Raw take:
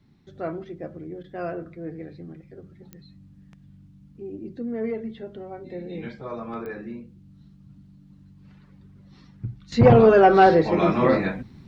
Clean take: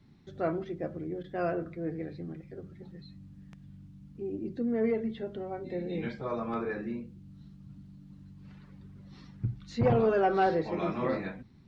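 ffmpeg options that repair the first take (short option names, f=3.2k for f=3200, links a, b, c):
-af "adeclick=t=4,asetnsamples=n=441:p=0,asendcmd='9.72 volume volume -11.5dB',volume=0dB"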